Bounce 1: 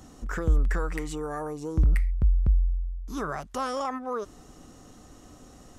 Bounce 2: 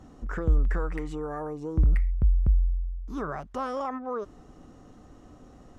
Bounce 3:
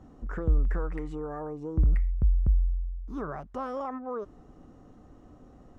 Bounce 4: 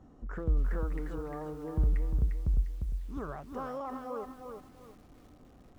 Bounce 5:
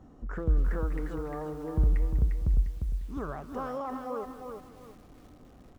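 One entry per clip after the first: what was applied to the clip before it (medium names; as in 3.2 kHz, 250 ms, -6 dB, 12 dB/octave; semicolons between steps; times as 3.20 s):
low-pass 1.5 kHz 6 dB/octave
treble shelf 2 kHz -9 dB; trim -1.5 dB
bit-crushed delay 351 ms, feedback 35%, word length 9-bit, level -5.5 dB; trim -4.5 dB
delay 196 ms -16.5 dB; trim +3 dB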